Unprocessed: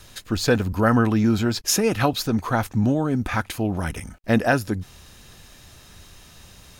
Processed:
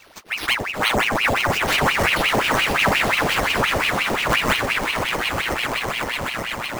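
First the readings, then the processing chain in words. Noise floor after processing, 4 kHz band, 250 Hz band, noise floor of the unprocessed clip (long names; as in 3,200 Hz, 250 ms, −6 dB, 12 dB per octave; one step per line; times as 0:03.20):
−32 dBFS, +10.0 dB, −7.0 dB, −49 dBFS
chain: echo that builds up and dies away 126 ms, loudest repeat 8, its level −8.5 dB
bad sample-rate conversion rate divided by 6×, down none, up hold
ring modulator whose carrier an LFO sweeps 1,500 Hz, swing 80%, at 5.7 Hz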